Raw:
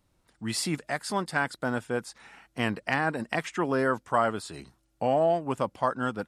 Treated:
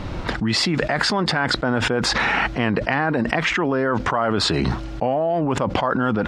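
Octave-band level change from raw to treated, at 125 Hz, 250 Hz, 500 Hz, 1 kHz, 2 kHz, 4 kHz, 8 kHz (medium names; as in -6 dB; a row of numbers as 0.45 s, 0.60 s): +11.5 dB, +10.0 dB, +6.0 dB, +6.5 dB, +9.5 dB, +15.0 dB, +6.5 dB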